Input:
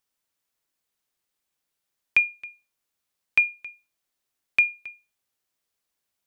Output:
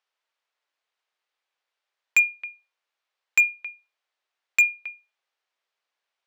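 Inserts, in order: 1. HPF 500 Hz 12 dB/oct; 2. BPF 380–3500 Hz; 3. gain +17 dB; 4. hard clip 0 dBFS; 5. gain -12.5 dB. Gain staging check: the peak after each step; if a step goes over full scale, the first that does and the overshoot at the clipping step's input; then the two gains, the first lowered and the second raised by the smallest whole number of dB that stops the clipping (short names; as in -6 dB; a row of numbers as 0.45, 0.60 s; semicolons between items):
-8.0, -9.0, +8.0, 0.0, -12.5 dBFS; step 3, 8.0 dB; step 3 +9 dB, step 5 -4.5 dB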